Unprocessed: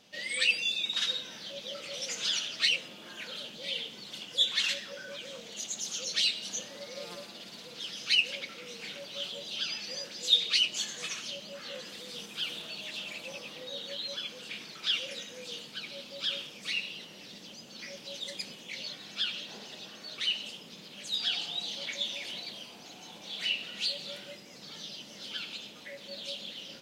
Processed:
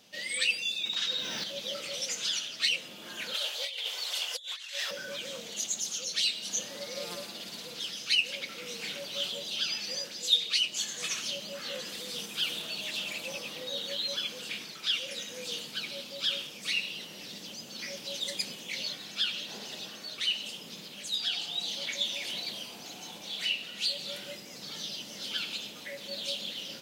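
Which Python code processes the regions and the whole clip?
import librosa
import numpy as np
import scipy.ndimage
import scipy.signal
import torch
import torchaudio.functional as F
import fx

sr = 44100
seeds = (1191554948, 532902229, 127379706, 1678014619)

y = fx.chain(x, sr, fx.lowpass(hz=6500.0, slope=12),
    fx.quant_dither(seeds[0], bits=12, dither='triangular'),
    fx.env_flatten(amount_pct=50), at=(0.82, 1.44))
y = fx.chain(y, sr, fx.highpass(hz=560.0, slope=24),
    fx.over_compress(threshold_db=-42.0, ratio=-1.0), at=(3.34, 4.91))
y = scipy.signal.sosfilt(scipy.signal.butter(2, 48.0, 'highpass', fs=sr, output='sos'), y)
y = fx.high_shelf(y, sr, hz=8000.0, db=10.0)
y = fx.rider(y, sr, range_db=3, speed_s=0.5)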